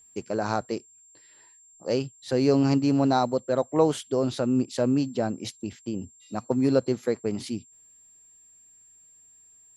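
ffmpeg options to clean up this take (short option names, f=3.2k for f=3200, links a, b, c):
-af "bandreject=f=7.4k:w=30"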